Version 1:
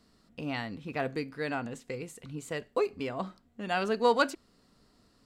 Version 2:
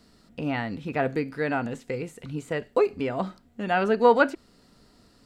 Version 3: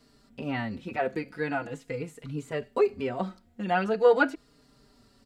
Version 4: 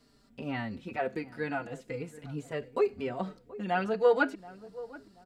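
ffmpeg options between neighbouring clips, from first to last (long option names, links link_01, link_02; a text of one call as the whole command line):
ffmpeg -i in.wav -filter_complex "[0:a]bandreject=frequency=1100:width=11,acrossover=split=2600[link_01][link_02];[link_02]acompressor=threshold=-55dB:ratio=4:attack=1:release=60[link_03];[link_01][link_03]amix=inputs=2:normalize=0,volume=7dB" out.wav
ffmpeg -i in.wav -filter_complex "[0:a]asplit=2[link_01][link_02];[link_02]adelay=4.5,afreqshift=-0.43[link_03];[link_01][link_03]amix=inputs=2:normalize=1" out.wav
ffmpeg -i in.wav -filter_complex "[0:a]asplit=2[link_01][link_02];[link_02]adelay=729,lowpass=frequency=930:poles=1,volume=-17dB,asplit=2[link_03][link_04];[link_04]adelay=729,lowpass=frequency=930:poles=1,volume=0.38,asplit=2[link_05][link_06];[link_06]adelay=729,lowpass=frequency=930:poles=1,volume=0.38[link_07];[link_01][link_03][link_05][link_07]amix=inputs=4:normalize=0,volume=-3.5dB" out.wav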